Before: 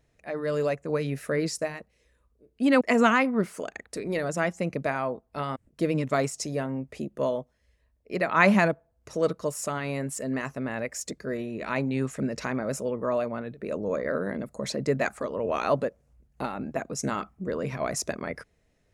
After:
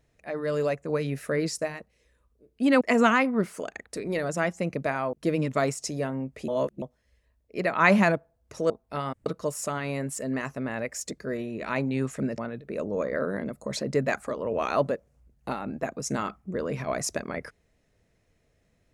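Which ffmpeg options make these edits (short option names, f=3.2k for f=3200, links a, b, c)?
-filter_complex "[0:a]asplit=7[a][b][c][d][e][f][g];[a]atrim=end=5.132[h];[b]atrim=start=5.688:end=7.042[i];[c]atrim=start=7.038:end=7.382,asetpts=PTS-STARTPTS,areverse[j];[d]atrim=start=7.378:end=9.262[k];[e]atrim=start=5.128:end=5.692[l];[f]atrim=start=9.258:end=12.382[m];[g]atrim=start=13.308[n];[h][i]acrossfade=d=0.004:c1=hsin:c2=hsin[o];[o][j]acrossfade=d=0.004:c1=hsin:c2=hsin[p];[p][k]acrossfade=d=0.004:c1=hsin:c2=hsin[q];[q][l]acrossfade=d=0.004:c1=hsin:c2=hsin[r];[r][m]acrossfade=d=0.004:c1=hsin:c2=hsin[s];[s][n]acrossfade=d=0.004:c1=hsin:c2=hsin"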